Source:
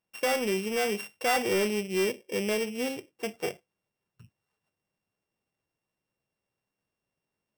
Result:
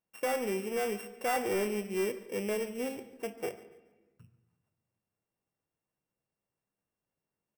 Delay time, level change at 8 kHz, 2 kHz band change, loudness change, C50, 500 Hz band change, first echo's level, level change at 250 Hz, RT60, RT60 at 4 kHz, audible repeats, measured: 142 ms, -6.0 dB, -7.0 dB, -4.5 dB, 13.0 dB, -3.5 dB, -19.5 dB, -4.5 dB, 1.2 s, 0.90 s, 2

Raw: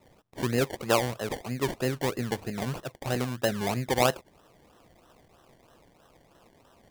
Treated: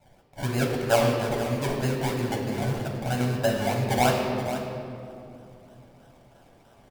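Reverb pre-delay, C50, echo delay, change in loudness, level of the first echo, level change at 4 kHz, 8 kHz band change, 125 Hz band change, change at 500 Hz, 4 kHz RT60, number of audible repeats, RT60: 3 ms, 2.0 dB, 478 ms, +3.0 dB, -12.0 dB, +1.5 dB, +1.0 dB, +6.0 dB, +3.5 dB, 1.7 s, 1, 2.7 s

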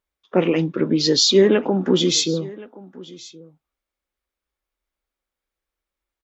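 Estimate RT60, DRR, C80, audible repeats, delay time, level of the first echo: no reverb, no reverb, no reverb, 1, 1072 ms, -21.0 dB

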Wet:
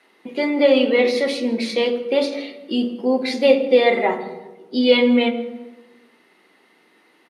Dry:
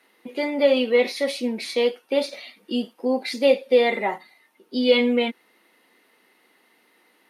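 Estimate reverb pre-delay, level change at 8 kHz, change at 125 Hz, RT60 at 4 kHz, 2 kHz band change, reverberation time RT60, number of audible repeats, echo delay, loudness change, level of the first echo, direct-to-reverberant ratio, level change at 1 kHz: 3 ms, no reading, no reading, 0.75 s, +3.5 dB, 1.1 s, 1, 165 ms, +3.5 dB, -22.0 dB, 7.0 dB, +4.0 dB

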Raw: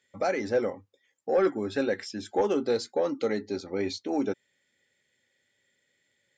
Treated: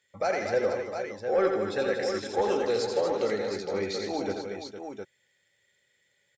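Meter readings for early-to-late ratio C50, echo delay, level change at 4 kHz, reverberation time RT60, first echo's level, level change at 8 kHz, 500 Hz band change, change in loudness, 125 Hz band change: no reverb, 86 ms, +2.5 dB, no reverb, -5.5 dB, +2.5 dB, +1.0 dB, 0.0 dB, +0.5 dB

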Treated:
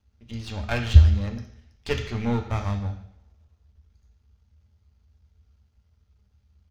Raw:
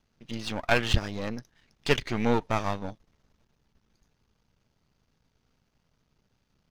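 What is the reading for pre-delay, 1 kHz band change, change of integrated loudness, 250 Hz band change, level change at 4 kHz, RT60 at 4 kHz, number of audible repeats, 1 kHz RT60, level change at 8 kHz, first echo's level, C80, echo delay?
3 ms, -4.5 dB, +5.0 dB, +0.5 dB, -3.5 dB, 0.70 s, 1, 0.70 s, -3.5 dB, -19.5 dB, 11.0 dB, 150 ms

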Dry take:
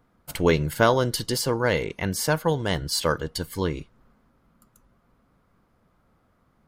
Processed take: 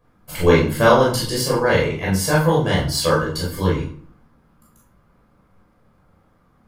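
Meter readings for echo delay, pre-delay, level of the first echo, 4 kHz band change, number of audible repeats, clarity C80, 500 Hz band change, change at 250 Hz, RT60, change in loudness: no echo, 14 ms, no echo, +4.0 dB, no echo, 9.0 dB, +6.5 dB, +6.5 dB, 0.55 s, +6.0 dB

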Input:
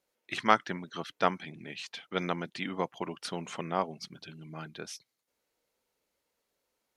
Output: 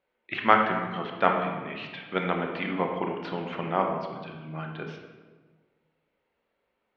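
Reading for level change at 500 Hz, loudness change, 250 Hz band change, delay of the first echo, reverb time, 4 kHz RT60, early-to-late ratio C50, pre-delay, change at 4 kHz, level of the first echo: +6.0 dB, +5.5 dB, +5.5 dB, no echo, 1.4 s, 0.95 s, 4.0 dB, 21 ms, 0.0 dB, no echo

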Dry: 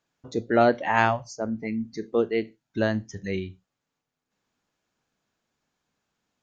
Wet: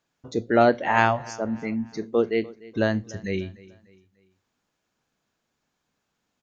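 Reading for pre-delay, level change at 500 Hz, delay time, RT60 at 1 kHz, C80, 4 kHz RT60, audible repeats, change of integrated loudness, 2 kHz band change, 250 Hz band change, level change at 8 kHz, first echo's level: no reverb, +1.5 dB, 296 ms, no reverb, no reverb, no reverb, 2, +1.5 dB, +1.5 dB, +1.5 dB, no reading, -21.0 dB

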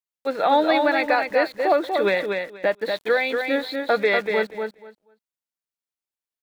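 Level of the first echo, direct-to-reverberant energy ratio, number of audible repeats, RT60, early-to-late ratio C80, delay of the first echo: -5.0 dB, no reverb, 2, no reverb, no reverb, 240 ms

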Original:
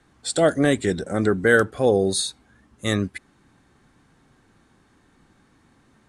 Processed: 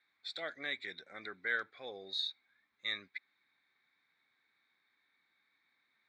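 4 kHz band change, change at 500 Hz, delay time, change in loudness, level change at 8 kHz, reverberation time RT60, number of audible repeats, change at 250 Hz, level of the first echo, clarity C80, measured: -8.5 dB, -28.5 dB, no echo, -18.5 dB, -36.0 dB, no reverb, no echo, -33.5 dB, no echo, no reverb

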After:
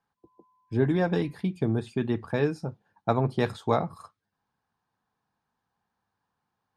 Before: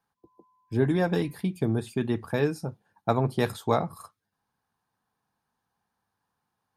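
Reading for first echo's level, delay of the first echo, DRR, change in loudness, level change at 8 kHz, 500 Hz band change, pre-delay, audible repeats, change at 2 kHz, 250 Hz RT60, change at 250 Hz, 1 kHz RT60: no echo, no echo, no reverb, 0.0 dB, no reading, 0.0 dB, no reverb, no echo, -0.5 dB, no reverb, 0.0 dB, no reverb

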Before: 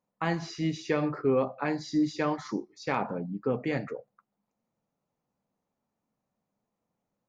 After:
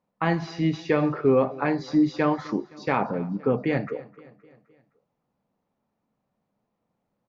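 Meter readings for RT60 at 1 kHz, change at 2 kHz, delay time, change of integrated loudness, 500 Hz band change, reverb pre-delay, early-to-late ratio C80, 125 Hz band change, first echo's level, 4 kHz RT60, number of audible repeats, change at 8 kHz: no reverb, +4.5 dB, 259 ms, +5.5 dB, +5.5 dB, no reverb, no reverb, +6.0 dB, -21.0 dB, no reverb, 3, no reading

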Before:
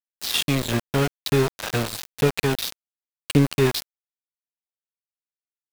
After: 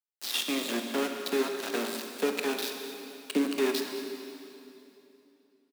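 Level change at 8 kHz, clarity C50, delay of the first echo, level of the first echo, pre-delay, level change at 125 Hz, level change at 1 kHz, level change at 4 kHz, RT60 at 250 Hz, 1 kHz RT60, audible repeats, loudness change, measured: -6.0 dB, 4.5 dB, 213 ms, -16.0 dB, 21 ms, under -30 dB, -6.0 dB, -6.0 dB, 3.5 s, 2.8 s, 1, -8.0 dB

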